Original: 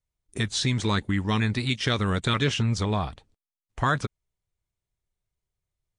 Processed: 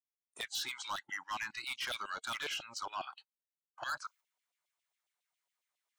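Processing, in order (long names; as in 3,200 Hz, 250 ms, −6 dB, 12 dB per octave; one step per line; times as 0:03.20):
noise gate −45 dBFS, range −12 dB
auto-filter high-pass saw down 7.3 Hz 650–3,100 Hz
reversed playback
upward compression, threshold −32 dBFS
reversed playback
hard clipping −25 dBFS, distortion −6 dB
noise reduction from a noise print of the clip's start 18 dB
level −8.5 dB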